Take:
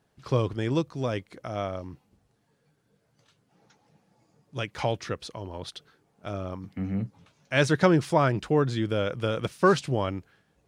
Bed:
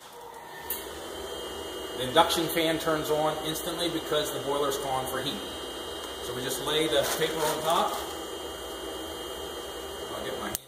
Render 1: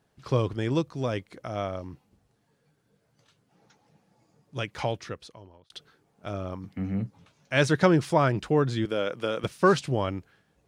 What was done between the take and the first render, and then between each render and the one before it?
4.70–5.70 s: fade out; 8.85–9.44 s: high-pass 230 Hz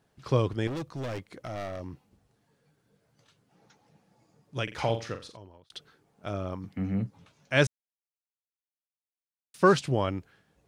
0.67–1.81 s: overload inside the chain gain 32 dB; 4.63–5.37 s: flutter echo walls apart 7.5 m, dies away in 0.32 s; 7.67–9.54 s: mute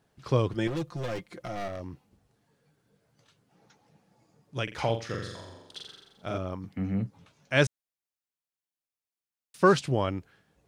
0.52–1.68 s: comb 5.7 ms, depth 67%; 5.05–6.38 s: flutter echo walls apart 7.4 m, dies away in 0.99 s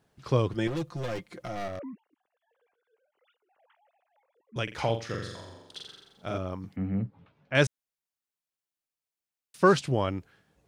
1.79–4.56 s: formants replaced by sine waves; 6.76–7.55 s: distance through air 380 m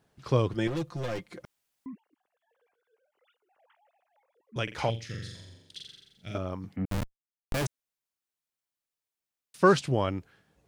1.45–1.86 s: room tone; 4.90–6.35 s: FFT filter 140 Hz 0 dB, 1.1 kHz -21 dB, 2 kHz -1 dB; 6.85–7.66 s: Schmitt trigger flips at -25.5 dBFS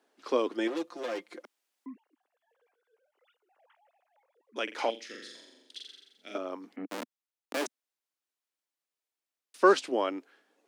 steep high-pass 250 Hz 48 dB/octave; treble shelf 10 kHz -6 dB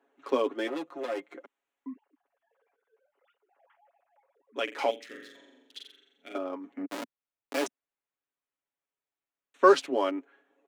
local Wiener filter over 9 samples; comb 7.2 ms, depth 67%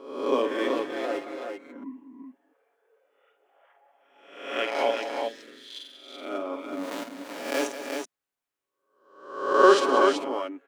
reverse spectral sustain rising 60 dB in 0.76 s; multi-tap echo 51/186/335/379 ms -7.5/-12/-12.5/-5.5 dB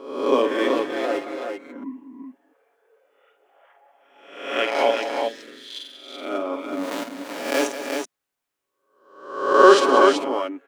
trim +5.5 dB; peak limiter -1 dBFS, peak gain reduction 1.5 dB

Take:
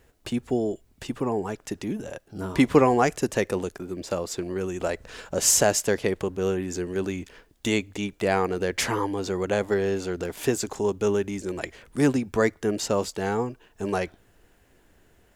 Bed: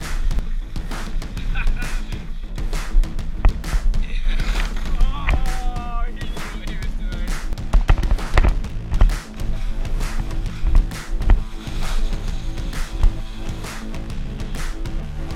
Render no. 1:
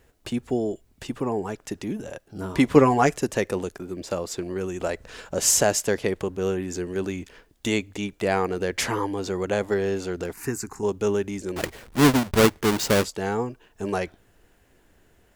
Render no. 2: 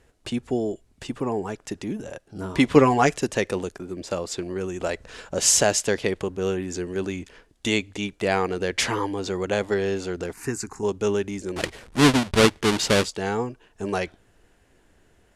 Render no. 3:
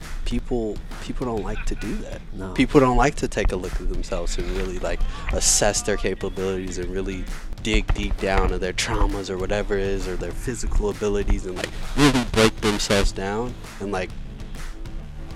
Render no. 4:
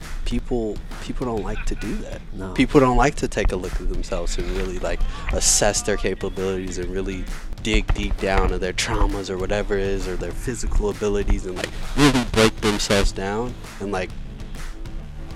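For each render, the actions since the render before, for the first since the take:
2.75–3.18 s: comb 7.1 ms; 10.33–10.83 s: static phaser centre 1.4 kHz, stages 4; 11.56–13.04 s: square wave that keeps the level
low-pass 11 kHz 24 dB/octave; dynamic bell 3.4 kHz, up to +5 dB, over -41 dBFS, Q 0.92
add bed -7.5 dB
trim +1 dB; peak limiter -2 dBFS, peak gain reduction 0.5 dB

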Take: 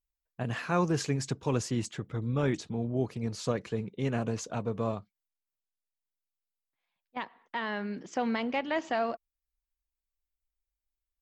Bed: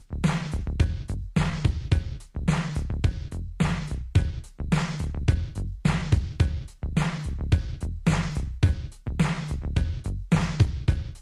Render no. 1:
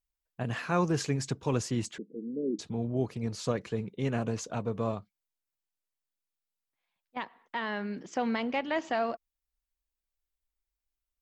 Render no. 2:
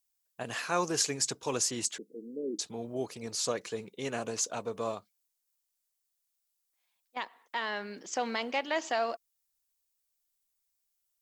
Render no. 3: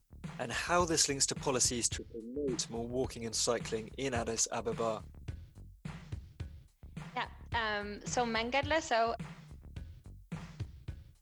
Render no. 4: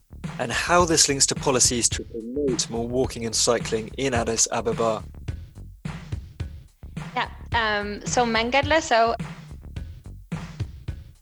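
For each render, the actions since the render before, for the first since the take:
1.98–2.59 s: elliptic band-pass 200–470 Hz, stop band 50 dB
tone controls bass -15 dB, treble +12 dB
add bed -21.5 dB
trim +11.5 dB

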